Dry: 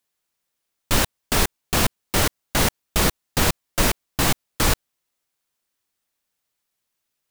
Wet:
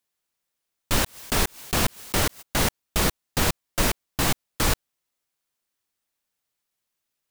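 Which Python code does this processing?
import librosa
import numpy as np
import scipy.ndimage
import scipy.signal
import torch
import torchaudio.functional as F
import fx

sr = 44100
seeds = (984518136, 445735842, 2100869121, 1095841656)

y = fx.pre_swell(x, sr, db_per_s=130.0, at=(1.01, 2.41), fade=0.02)
y = F.gain(torch.from_numpy(y), -3.0).numpy()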